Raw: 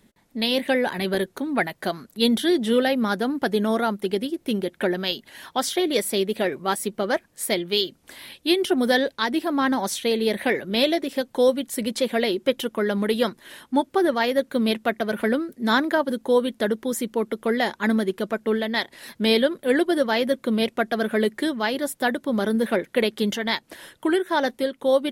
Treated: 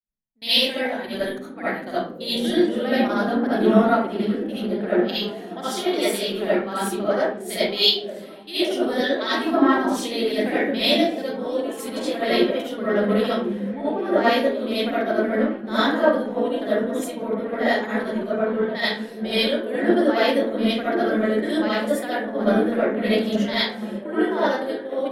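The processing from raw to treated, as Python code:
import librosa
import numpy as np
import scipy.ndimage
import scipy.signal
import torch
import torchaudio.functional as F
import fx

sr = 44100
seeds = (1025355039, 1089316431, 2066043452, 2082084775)

y = fx.high_shelf(x, sr, hz=11000.0, db=-7.0)
y = fx.level_steps(y, sr, step_db=12)
y = fx.echo_stepped(y, sr, ms=530, hz=190.0, octaves=0.7, feedback_pct=70, wet_db=-1.5)
y = fx.rev_freeverb(y, sr, rt60_s=0.62, hf_ratio=0.6, predelay_ms=30, drr_db=-9.5)
y = fx.band_widen(y, sr, depth_pct=100)
y = F.gain(torch.from_numpy(y), -5.0).numpy()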